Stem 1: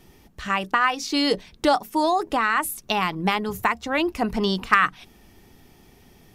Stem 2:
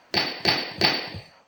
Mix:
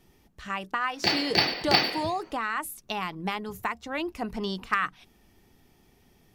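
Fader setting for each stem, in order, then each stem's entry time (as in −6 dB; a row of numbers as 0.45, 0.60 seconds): −8.5, −1.5 decibels; 0.00, 0.90 seconds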